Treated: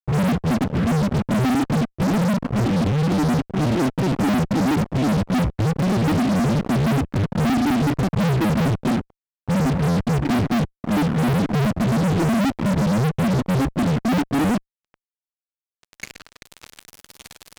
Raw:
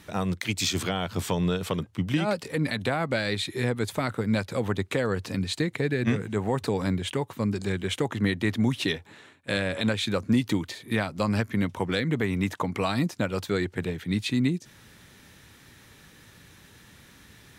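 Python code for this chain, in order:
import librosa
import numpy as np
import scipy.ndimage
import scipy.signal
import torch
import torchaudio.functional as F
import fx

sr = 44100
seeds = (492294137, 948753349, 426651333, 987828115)

y = fx.filter_sweep_lowpass(x, sr, from_hz=200.0, to_hz=4100.0, start_s=14.4, end_s=16.72, q=6.8)
y = fx.granulator(y, sr, seeds[0], grain_ms=100.0, per_s=19.0, spray_ms=20.0, spread_st=7)
y = fx.fuzz(y, sr, gain_db=43.0, gate_db=-41.0)
y = F.gain(torch.from_numpy(y), -4.5).numpy()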